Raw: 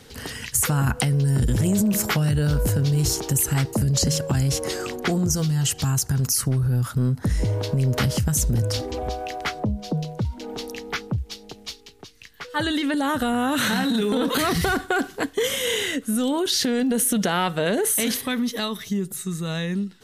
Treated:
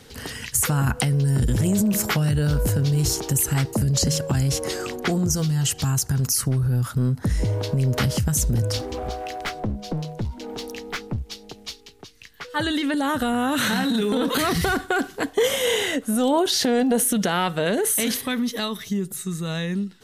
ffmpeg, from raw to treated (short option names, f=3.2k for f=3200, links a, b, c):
-filter_complex "[0:a]asettb=1/sr,asplit=3[a][b][c];[a]atrim=end=8.784[d];[b]atrim=start=8.78:end=11.27,asetpts=PTS-STARTPTS,afade=t=in:d=0.004:c=qsin,afade=t=out:st=2.486:d=0.004:c=qsin,aeval=exprs='clip(val(0),-1,0.0398)':c=same[e];[c]atrim=start=11.266[f];[d][e]acrossfade=d=0.004:c1=hsin:c2=qsin[g];[g][f]acrossfade=d=0.004:c1=qsin:c2=hsin,asettb=1/sr,asplit=3[h][i][j];[h]atrim=end=15.264[k];[i]atrim=start=15.26:end=17.06,asetpts=PTS-STARTPTS,afade=t=in:d=0.004:c=qsin,afade=t=out:st=1.796:d=0.004:c=qsin,equalizer=f=730:t=o:w=1:g=10.5[l];[j]atrim=start=17.056[m];[k][l]acrossfade=d=0.004:c1=hsin:c2=qsin[n];[n][m]acrossfade=d=0.004:c1=qsin:c2=hsin"